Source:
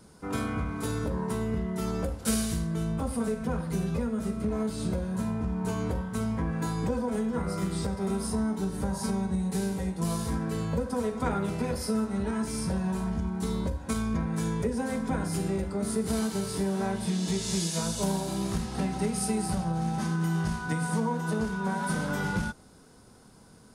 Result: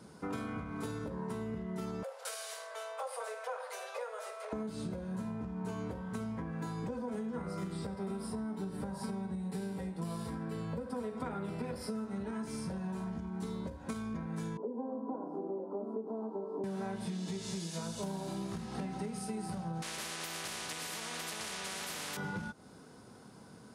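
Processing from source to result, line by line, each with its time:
0:02.03–0:04.53: Butterworth high-pass 490 Hz 72 dB per octave
0:07.73–0:11.89: notch filter 6,400 Hz, Q 5.2
0:14.57–0:16.64: elliptic band-pass filter 250–1,000 Hz
0:19.82–0:22.17: every bin compressed towards the loudest bin 10 to 1
whole clip: downward compressor, threshold −37 dBFS; high-pass filter 110 Hz 12 dB per octave; high-shelf EQ 5,700 Hz −8 dB; level +1.5 dB

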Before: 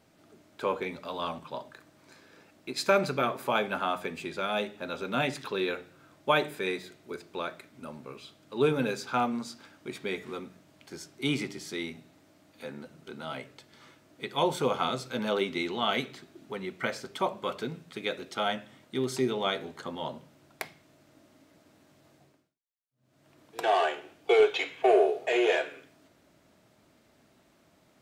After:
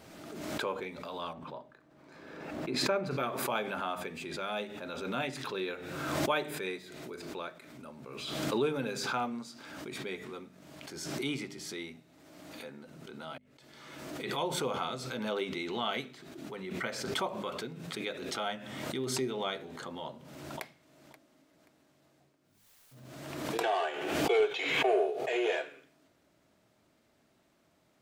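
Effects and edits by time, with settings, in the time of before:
0:01.33–0:03.11: parametric band 12,000 Hz −15 dB 2.8 octaves
0:13.38–0:15.18: fade in equal-power
0:20.04–0:20.63: delay throw 530 ms, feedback 25%, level −16 dB
whole clip: mains-hum notches 50/100/150/200/250 Hz; background raised ahead of every attack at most 35 dB per second; level −6 dB

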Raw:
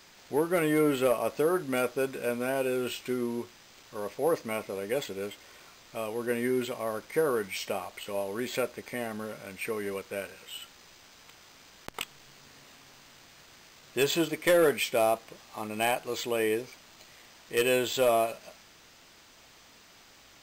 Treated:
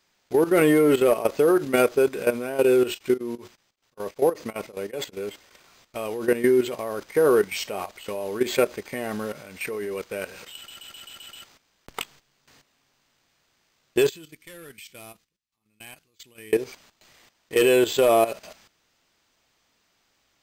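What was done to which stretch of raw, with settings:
0:02.90–0:05.22: tremolo along a rectified sine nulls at 5.2 Hz
0:10.55: stutter in place 0.13 s, 7 plays
0:14.09–0:16.53: guitar amp tone stack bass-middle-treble 6-0-2
whole clip: noise gate with hold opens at −41 dBFS; dynamic equaliser 390 Hz, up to +7 dB, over −41 dBFS, Q 3; output level in coarse steps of 13 dB; level +9 dB

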